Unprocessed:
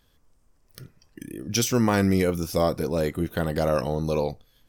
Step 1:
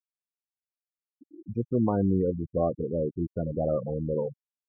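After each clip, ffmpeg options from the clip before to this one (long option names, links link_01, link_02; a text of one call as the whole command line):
ffmpeg -i in.wav -af "highpass=43,afftfilt=real='re*gte(hypot(re,im),0.158)':imag='im*gte(hypot(re,im),0.158)':win_size=1024:overlap=0.75,lowpass=frequency=1000:width=0.5412,lowpass=frequency=1000:width=1.3066,volume=-3dB" out.wav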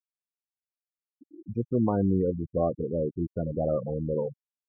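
ffmpeg -i in.wav -af anull out.wav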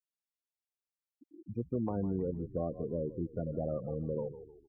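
ffmpeg -i in.wav -filter_complex "[0:a]adynamicequalizer=threshold=0.0141:dfrequency=590:dqfactor=0.8:tfrequency=590:tqfactor=0.8:attack=5:release=100:ratio=0.375:range=2:mode=boostabove:tftype=bell,asplit=4[link_01][link_02][link_03][link_04];[link_02]adelay=153,afreqshift=-39,volume=-16dB[link_05];[link_03]adelay=306,afreqshift=-78,volume=-25.1dB[link_06];[link_04]adelay=459,afreqshift=-117,volume=-34.2dB[link_07];[link_01][link_05][link_06][link_07]amix=inputs=4:normalize=0,acrossover=split=320|830[link_08][link_09][link_10];[link_08]acompressor=threshold=-26dB:ratio=4[link_11];[link_09]acompressor=threshold=-34dB:ratio=4[link_12];[link_10]acompressor=threshold=-41dB:ratio=4[link_13];[link_11][link_12][link_13]amix=inputs=3:normalize=0,volume=-6dB" out.wav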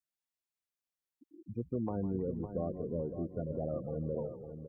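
ffmpeg -i in.wav -af "aecho=1:1:557|1114|1671|2228:0.335|0.117|0.041|0.0144,volume=-1.5dB" out.wav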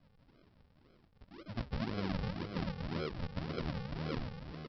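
ffmpeg -i in.wav -af "aeval=exprs='val(0)+0.5*0.00501*sgn(val(0))':channel_layout=same,aresample=11025,acrusher=samples=23:mix=1:aa=0.000001:lfo=1:lforange=23:lforate=1.9,aresample=44100,volume=-3dB" out.wav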